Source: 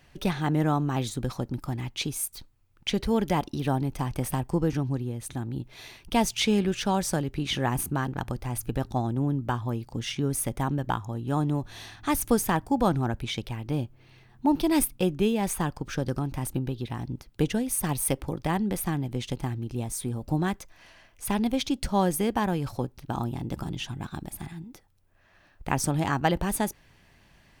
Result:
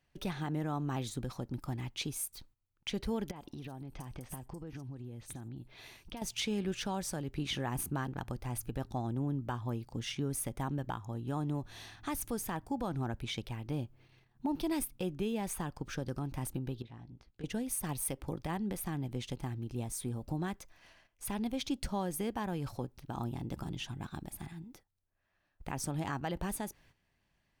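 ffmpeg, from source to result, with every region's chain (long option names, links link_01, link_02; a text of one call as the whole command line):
ffmpeg -i in.wav -filter_complex "[0:a]asettb=1/sr,asplit=3[link_01][link_02][link_03];[link_01]atrim=end=3.314[link_04];[link_02]atrim=start=3.31:end=6.22,asetpts=PTS-STARTPTS,afade=type=in:duration=0.004:curve=qsin,afade=type=out:start_time=2.906:duration=0.004:curve=qsin,acompressor=threshold=-33dB:ratio=12:attack=3.2:release=140:knee=1:detection=peak,acrossover=split=5300[link_05][link_06];[link_06]adelay=50[link_07];[link_05][link_07]amix=inputs=2:normalize=0,atrim=end_sample=128331[link_08];[link_03]atrim=start=6.216[link_09];[link_04][link_08]acrossfade=duration=0.004:curve1=hsin:curve2=qsin[link_10];[link_10][link_09]acrossfade=duration=0.004:curve1=qsin:curve2=hsin,asettb=1/sr,asplit=3[link_11][link_12][link_13];[link_11]atrim=end=16.824[link_14];[link_12]atrim=start=16.82:end=17.44,asetpts=PTS-STARTPTS,afade=type=in:duration=0.004:curve=qsin,afade=type=out:start_time=0.616:duration=0.004:curve=qsin,lowpass=4800,acompressor=threshold=-51dB:ratio=2:attack=3.2:release=140:knee=1:detection=peak,asplit=2[link_15][link_16];[link_16]adelay=18,volume=-6dB[link_17];[link_15][link_17]amix=inputs=2:normalize=0,atrim=end_sample=27342[link_18];[link_13]atrim=start=17.436[link_19];[link_14][link_18]acrossfade=duration=0.004:curve1=hsin:curve2=qsin[link_20];[link_20][link_19]acrossfade=duration=0.004:curve1=qsin:curve2=hsin,agate=range=-12dB:threshold=-53dB:ratio=16:detection=peak,alimiter=limit=-18.5dB:level=0:latency=1:release=165,volume=-6.5dB" out.wav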